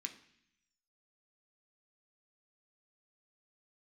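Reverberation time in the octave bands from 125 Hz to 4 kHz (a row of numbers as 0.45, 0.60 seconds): 1.0, 0.95, 0.65, 0.70, 0.95, 1.0 seconds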